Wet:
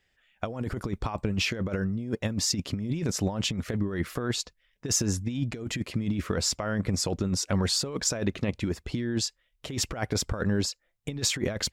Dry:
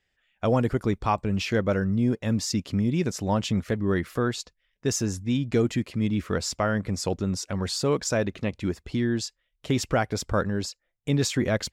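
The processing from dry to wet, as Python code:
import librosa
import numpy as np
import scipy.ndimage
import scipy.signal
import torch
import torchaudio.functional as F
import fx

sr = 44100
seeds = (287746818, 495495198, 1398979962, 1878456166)

y = fx.over_compress(x, sr, threshold_db=-27.0, ratio=-0.5)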